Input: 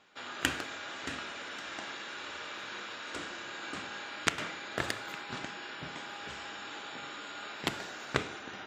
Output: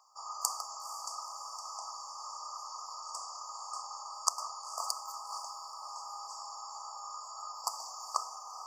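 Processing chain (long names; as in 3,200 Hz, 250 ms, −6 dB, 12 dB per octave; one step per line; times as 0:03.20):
brick-wall band-stop 1,300–4,500 Hz
inverse Chebyshev high-pass filter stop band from 360 Hz, stop band 50 dB
feedback delay with all-pass diffusion 477 ms, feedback 42%, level −14 dB
level +7 dB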